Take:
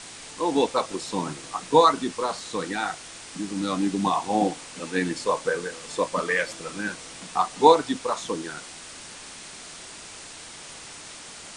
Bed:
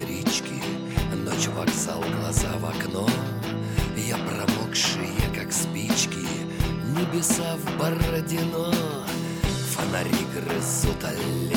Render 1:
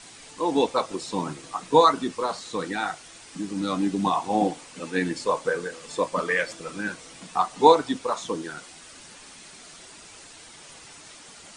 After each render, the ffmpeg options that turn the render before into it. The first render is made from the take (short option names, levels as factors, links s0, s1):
-af "afftdn=nr=7:nf=-42"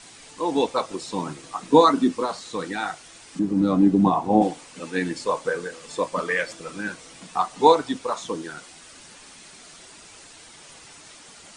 -filter_complex "[0:a]asettb=1/sr,asplit=3[s0][s1][s2];[s0]atrim=end=1.634[s3];[s1]atrim=start=1.63:end=2.25,asetpts=PTS-STARTPTS,afade=t=in:d=0.004:c=qsin,afade=t=out:st=0.616:d=0.004:c=qsin,equalizer=f=260:w=1.5:g=10.5[s4];[s2]atrim=start=2.246[s5];[s3][s4]acrossfade=d=0.004:c1=hsin:c2=qsin[s6];[s6][s5]acrossfade=d=0.004:c1=qsin:c2=hsin,asettb=1/sr,asplit=3[s7][s8][s9];[s7]atrim=end=3.394[s10];[s8]atrim=start=3.39:end=4.42,asetpts=PTS-STARTPTS,afade=t=in:d=0.004:c=qsin,afade=t=out:st=1.026:d=0.004:c=qsin,tiltshelf=f=1100:g=9.5[s11];[s9]atrim=start=4.416[s12];[s10][s11]acrossfade=d=0.004:c1=hsin:c2=qsin[s13];[s13][s12]acrossfade=d=0.004:c1=qsin:c2=hsin"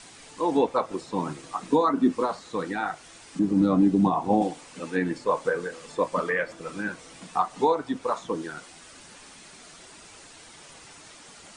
-filter_complex "[0:a]acrossover=split=2100[s0][s1];[s0]alimiter=limit=0.282:level=0:latency=1:release=296[s2];[s1]acompressor=threshold=0.00447:ratio=6[s3];[s2][s3]amix=inputs=2:normalize=0"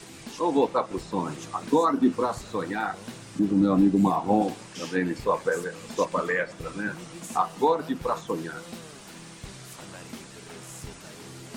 -filter_complex "[1:a]volume=0.126[s0];[0:a][s0]amix=inputs=2:normalize=0"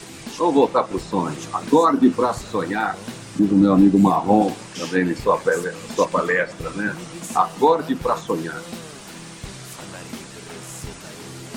-af "volume=2.11"